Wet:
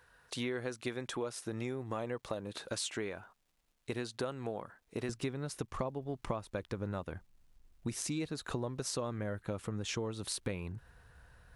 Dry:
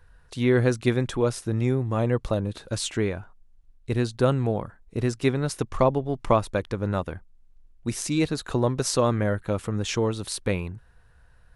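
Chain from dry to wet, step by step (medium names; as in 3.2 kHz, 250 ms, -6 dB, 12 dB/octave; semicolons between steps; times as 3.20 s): high-pass 480 Hz 6 dB/octave, from 5.09 s 59 Hz; compression 6:1, threshold -36 dBFS, peak gain reduction 19.5 dB; crackle 550 per s -69 dBFS; trim +1 dB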